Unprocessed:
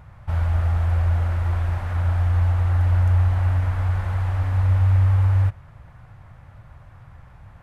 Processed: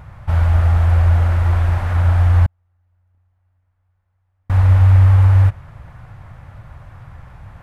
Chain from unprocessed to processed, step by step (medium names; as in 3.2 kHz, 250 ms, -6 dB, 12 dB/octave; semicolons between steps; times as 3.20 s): 2.46–4.50 s: gate -10 dBFS, range -51 dB; trim +7 dB